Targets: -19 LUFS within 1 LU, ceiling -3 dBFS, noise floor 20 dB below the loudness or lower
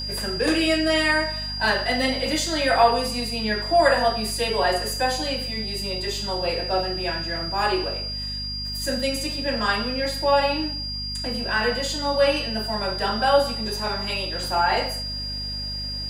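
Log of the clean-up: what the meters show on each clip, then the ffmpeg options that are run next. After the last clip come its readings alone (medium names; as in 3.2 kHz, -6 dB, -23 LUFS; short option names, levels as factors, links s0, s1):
hum 50 Hz; highest harmonic 250 Hz; hum level -32 dBFS; steady tone 4.8 kHz; tone level -29 dBFS; loudness -23.0 LUFS; peak level -5.0 dBFS; loudness target -19.0 LUFS
-> -af "bandreject=f=50:t=h:w=6,bandreject=f=100:t=h:w=6,bandreject=f=150:t=h:w=6,bandreject=f=200:t=h:w=6,bandreject=f=250:t=h:w=6"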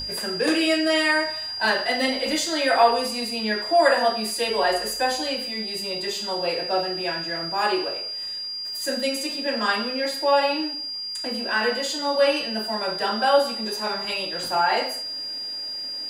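hum not found; steady tone 4.8 kHz; tone level -29 dBFS
-> -af "bandreject=f=4800:w=30"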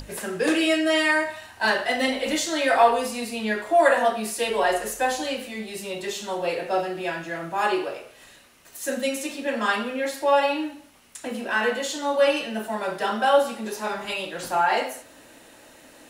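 steady tone not found; loudness -24.0 LUFS; peak level -5.0 dBFS; loudness target -19.0 LUFS
-> -af "volume=1.78,alimiter=limit=0.708:level=0:latency=1"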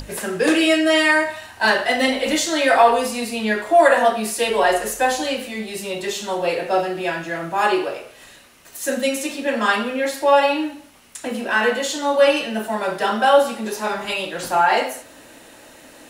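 loudness -19.5 LUFS; peak level -3.0 dBFS; noise floor -46 dBFS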